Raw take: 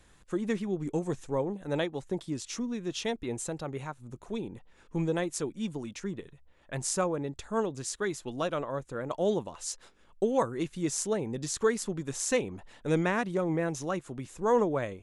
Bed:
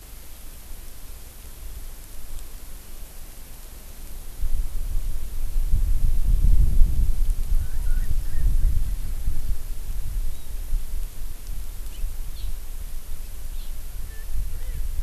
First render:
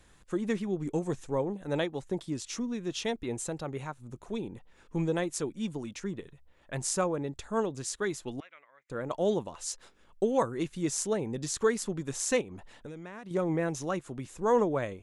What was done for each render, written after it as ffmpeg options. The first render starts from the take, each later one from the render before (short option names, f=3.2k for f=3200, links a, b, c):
-filter_complex "[0:a]asettb=1/sr,asplit=3[a][b][c];[a]atrim=end=8.404[d];[b]atrim=start=8.4:end=8.9,asetpts=PTS-STARTPTS,afade=t=in:d=0.004:c=qsin,afade=t=out:st=0.496:d=0.004:c=qsin,bandpass=f=2.1k:t=q:w=9.4[e];[c]atrim=start=8.896[f];[d][e]acrossfade=d=0.004:c1=hsin:c2=qsin[g];[g][f]acrossfade=d=0.004:c1=qsin:c2=hsin,asettb=1/sr,asplit=3[h][i][j];[h]atrim=end=12.414[k];[i]atrim=start=12.41:end=13.31,asetpts=PTS-STARTPTS,afade=t=in:d=0.004:c=qsin,afade=t=out:st=0.896:d=0.004:c=qsin,acompressor=threshold=-39dB:ratio=16:attack=3.2:release=140:knee=1:detection=peak[l];[j]atrim=start=13.306[m];[k][l]acrossfade=d=0.004:c1=hsin:c2=qsin[n];[n][m]acrossfade=d=0.004:c1=qsin:c2=hsin"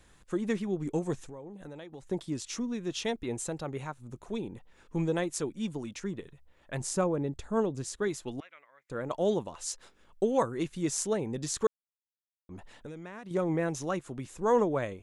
-filter_complex "[0:a]asettb=1/sr,asplit=3[a][b][c];[a]atrim=end=1.234[d];[b]atrim=start=1.23:end=2.1,asetpts=PTS-STARTPTS,afade=t=in:d=0.004:c=qsin,afade=t=out:st=0.866:d=0.004:c=qsin,acompressor=threshold=-40dB:ratio=16:attack=3.2:release=140:knee=1:detection=peak[e];[c]atrim=start=2.096[f];[d][e]acrossfade=d=0.004:c1=hsin:c2=qsin[g];[g][f]acrossfade=d=0.004:c1=qsin:c2=hsin,asettb=1/sr,asplit=3[h][i][j];[h]atrim=end=6.804[k];[i]atrim=start=6.8:end=8.08,asetpts=PTS-STARTPTS,afade=t=in:d=0.004:c=qsin,afade=t=out:st=1.276:d=0.004:c=qsin,tiltshelf=f=640:g=4[l];[j]atrim=start=8.076[m];[k][l]acrossfade=d=0.004:c1=hsin:c2=qsin[n];[n][m]acrossfade=d=0.004:c1=qsin:c2=hsin,asplit=3[o][p][q];[o]atrim=end=11.67,asetpts=PTS-STARTPTS,afade=t=out:st=11.666:d=0.004:c=hsin[r];[p]atrim=start=11.67:end=12.49,asetpts=PTS-STARTPTS,volume=0[s];[q]atrim=start=12.49,asetpts=PTS-STARTPTS,afade=t=in:d=0.004:c=hsin[t];[r][s][t]concat=n=3:v=0:a=1"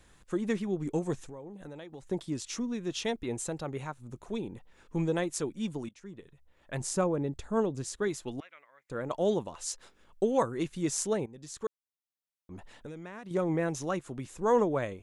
-filter_complex "[0:a]asplit=3[a][b][c];[a]atrim=end=5.89,asetpts=PTS-STARTPTS,afade=t=out:st=5.886:d=0.004:c=hsin:silence=0.112202[d];[b]atrim=start=5.89:end=11.26,asetpts=PTS-STARTPTS,afade=t=in:d=0.88:silence=0.112202,afade=t=out:st=5.366:d=0.004:c=hsin:silence=0.141254[e];[c]atrim=start=11.26,asetpts=PTS-STARTPTS,afade=t=in:d=1.29:silence=0.141254[f];[d][e][f]concat=n=3:v=0:a=1"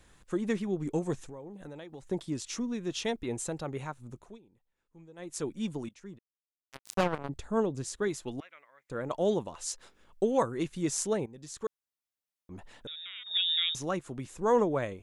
-filter_complex "[0:a]asplit=3[a][b][c];[a]afade=t=out:st=6.17:d=0.02[d];[b]acrusher=bits=3:mix=0:aa=0.5,afade=t=in:st=6.17:d=0.02,afade=t=out:st=7.28:d=0.02[e];[c]afade=t=in:st=7.28:d=0.02[f];[d][e][f]amix=inputs=3:normalize=0,asettb=1/sr,asplit=3[g][h][i];[g]atrim=end=12.874[j];[h]atrim=start=12.87:end=13.75,asetpts=PTS-STARTPTS,afade=t=in:d=0.004:c=qsin,afade=t=out:st=0.876:d=0.004:c=qsin,lowpass=f=3.3k:t=q:w=0.5098,lowpass=f=3.3k:t=q:w=0.6013,lowpass=f=3.3k:t=q:w=0.9,lowpass=f=3.3k:t=q:w=2.563,afreqshift=-3900[k];[i]atrim=start=13.746[l];[j][k]acrossfade=d=0.004:c1=hsin:c2=qsin[m];[m][l]acrossfade=d=0.004:c1=qsin:c2=hsin,asplit=3[n][o][p];[n]atrim=end=4.39,asetpts=PTS-STARTPTS,afade=t=out:st=4.07:d=0.32:silence=0.0668344[q];[o]atrim=start=4.39:end=5.16,asetpts=PTS-STARTPTS,volume=-23.5dB[r];[p]atrim=start=5.16,asetpts=PTS-STARTPTS,afade=t=in:d=0.32:silence=0.0668344[s];[q][r][s]concat=n=3:v=0:a=1"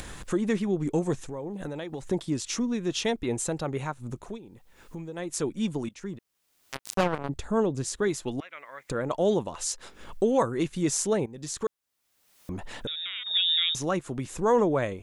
-filter_complex "[0:a]asplit=2[a][b];[b]alimiter=limit=-24dB:level=0:latency=1:release=23,volume=-1dB[c];[a][c]amix=inputs=2:normalize=0,acompressor=mode=upward:threshold=-28dB:ratio=2.5"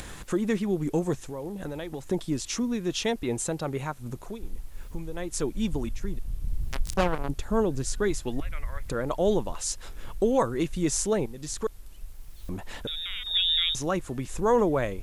-filter_complex "[1:a]volume=-13dB[a];[0:a][a]amix=inputs=2:normalize=0"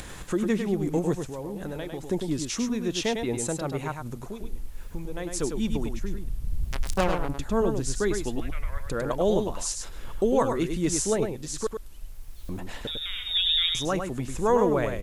-af "aecho=1:1:102:0.501"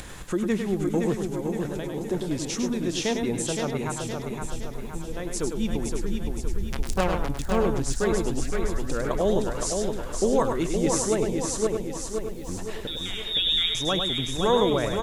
-af "aecho=1:1:517|1034|1551|2068|2585|3102|3619:0.562|0.292|0.152|0.0791|0.0411|0.0214|0.0111"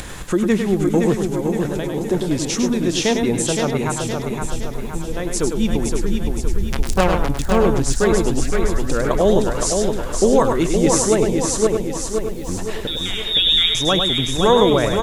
-af "volume=8dB,alimiter=limit=-3dB:level=0:latency=1"